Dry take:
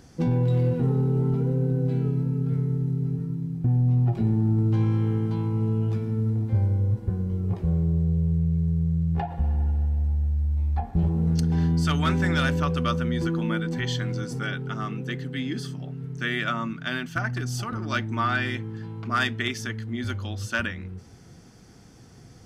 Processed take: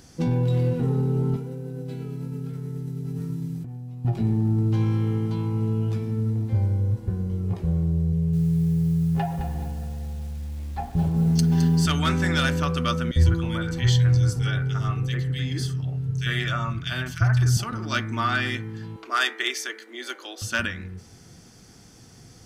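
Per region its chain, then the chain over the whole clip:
0:01.36–0:04.05: spectral tilt +1.5 dB per octave + compressor whose output falls as the input rises −32 dBFS
0:08.12–0:11.86: comb filter 7.4 ms, depth 57% + feedback echo at a low word length 213 ms, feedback 35%, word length 8 bits, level −9 dB
0:13.11–0:17.57: low shelf with overshoot 140 Hz +12.5 dB, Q 3 + multiband delay without the direct sound highs, lows 50 ms, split 2,000 Hz
0:18.96–0:20.42: Butterworth high-pass 310 Hz 48 dB per octave + notch filter 5,200 Hz, Q 24
whole clip: high-shelf EQ 2,900 Hz +7.5 dB; hum removal 68.29 Hz, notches 35

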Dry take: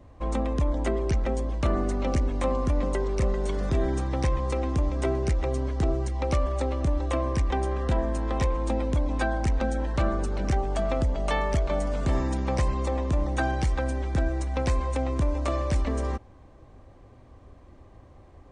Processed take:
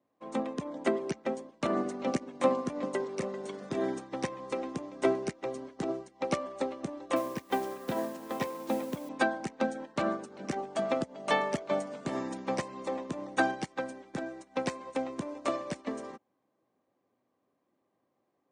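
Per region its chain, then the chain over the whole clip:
0:07.16–0:09.09: low-pass filter 5,500 Hz + bit-depth reduction 8 bits, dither triangular
whole clip: high-pass filter 180 Hz 24 dB per octave; expander for the loud parts 2.5 to 1, over −41 dBFS; level +4 dB

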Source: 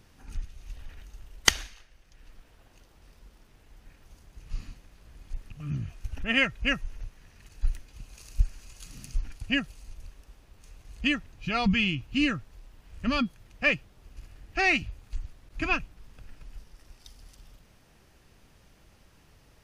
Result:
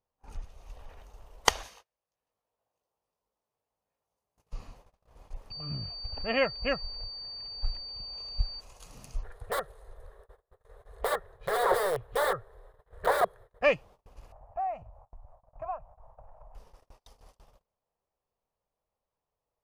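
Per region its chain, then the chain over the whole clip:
0:01.63–0:04.53: high-pass filter 98 Hz + high-shelf EQ 6,800 Hz +10.5 dB + double-tracking delay 19 ms −6 dB
0:05.50–0:08.59: high-frequency loss of the air 170 metres + steady tone 4,600 Hz −33 dBFS
0:09.23–0:13.63: notch filter 4,600 Hz, Q 11 + wrap-around overflow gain 23.5 dB + drawn EQ curve 120 Hz 0 dB, 260 Hz −19 dB, 400 Hz +9 dB, 890 Hz −3 dB, 1,800 Hz +9 dB, 2,600 Hz −15 dB, 3,700 Hz 0 dB, 5,900 Hz −16 dB, 9,100 Hz −2 dB, 14,000 Hz −4 dB
0:14.32–0:16.55: drawn EQ curve 120 Hz 0 dB, 290 Hz −20 dB, 410 Hz −15 dB, 630 Hz +8 dB, 920 Hz +4 dB, 3,900 Hz −30 dB, 8,000 Hz −20 dB + downward compressor 3 to 1, threshold −42 dBFS
whole clip: noise gate −49 dBFS, range −29 dB; flat-topped bell 710 Hz +13.5 dB; level −5.5 dB

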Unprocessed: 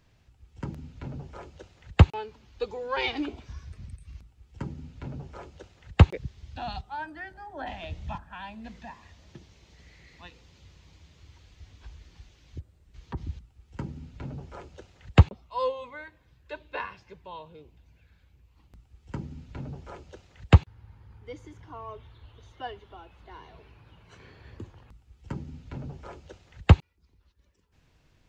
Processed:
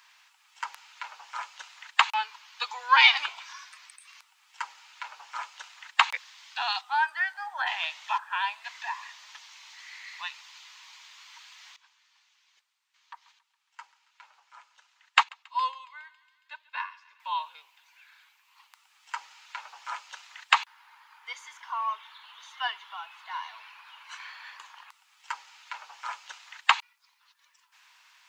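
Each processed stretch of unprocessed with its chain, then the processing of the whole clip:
0:11.76–0:17.20: feedback echo with a high-pass in the loop 138 ms, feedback 75%, high-pass 1,100 Hz, level −16 dB + expander for the loud parts, over −42 dBFS
whole clip: elliptic high-pass filter 950 Hz, stop band 80 dB; boost into a limiter +14.5 dB; level −1 dB

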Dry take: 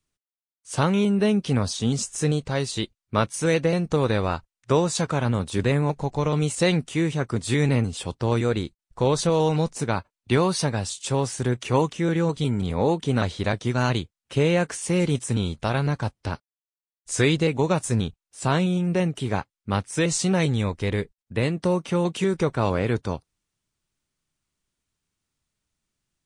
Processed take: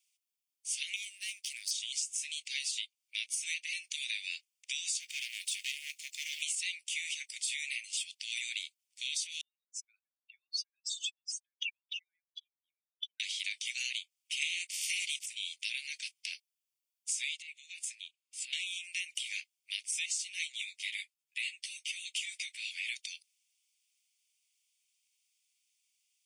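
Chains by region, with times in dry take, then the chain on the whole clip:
0:00.96–0:01.71: gain on one half-wave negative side −7 dB + parametric band 2,900 Hz −8.5 dB 1.1 octaves
0:05.00–0:06.42: mu-law and A-law mismatch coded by mu + hard clipping −22 dBFS
0:09.41–0:13.20: expanding power law on the bin magnitudes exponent 3.1 + high-frequency loss of the air 120 metres
0:14.41–0:15.25: ceiling on every frequency bin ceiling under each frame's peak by 27 dB + frequency shifter +23 Hz
0:17.42–0:18.53: downward compressor 2.5 to 1, threshold −35 dBFS + high-shelf EQ 5,900 Hz −9.5 dB + notch filter 5,700 Hz
0:20.52–0:22.87: notch filter 5,800 Hz, Q 25 + string-ensemble chorus
whole clip: Butterworth high-pass 2,200 Hz 72 dB per octave; notch filter 4,000 Hz, Q 8.5; downward compressor 12 to 1, threshold −39 dBFS; level +6.5 dB

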